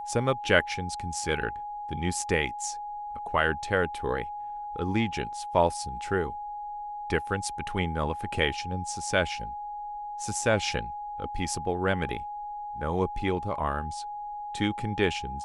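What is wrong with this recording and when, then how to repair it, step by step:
tone 830 Hz -34 dBFS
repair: notch 830 Hz, Q 30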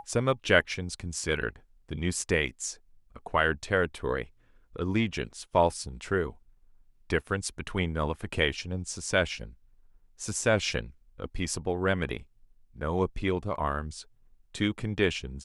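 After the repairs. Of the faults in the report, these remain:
none

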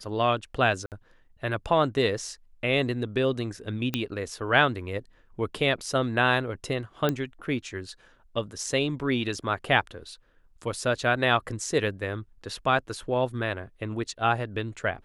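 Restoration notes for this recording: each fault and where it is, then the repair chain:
0.86–0.92 gap 58 ms
3.94 pop -12 dBFS
7.09 pop -12 dBFS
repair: de-click; interpolate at 0.86, 58 ms

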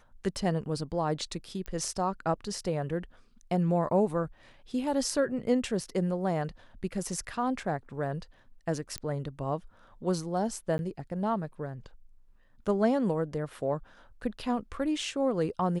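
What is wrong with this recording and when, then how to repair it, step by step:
1.66 pop -24 dBFS
8.98 pop -18 dBFS
10.78–10.79 gap 11 ms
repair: de-click; interpolate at 10.78, 11 ms

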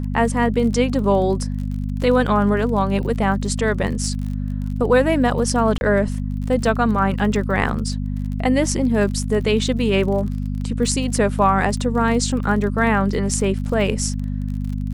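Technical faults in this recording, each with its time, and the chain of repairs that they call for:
crackle 40/s -29 dBFS
hum 50 Hz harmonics 5 -24 dBFS
5.78–5.81 gap 31 ms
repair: de-click; de-hum 50 Hz, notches 5; interpolate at 5.78, 31 ms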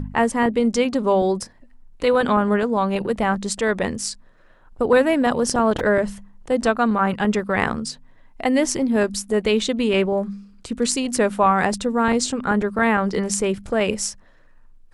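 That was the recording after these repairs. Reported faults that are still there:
none

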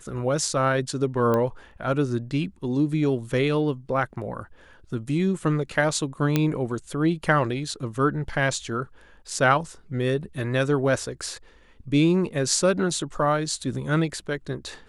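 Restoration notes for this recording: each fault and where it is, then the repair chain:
1.34 pop -13 dBFS
6.36 pop -7 dBFS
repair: de-click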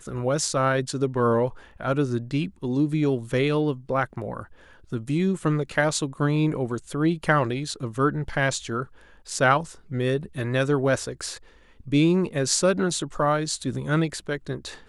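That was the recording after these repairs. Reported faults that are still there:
none

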